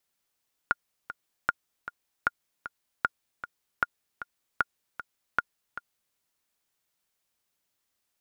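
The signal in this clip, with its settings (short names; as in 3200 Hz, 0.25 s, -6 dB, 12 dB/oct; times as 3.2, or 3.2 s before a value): metronome 154 bpm, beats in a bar 2, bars 7, 1420 Hz, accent 13 dB -9.5 dBFS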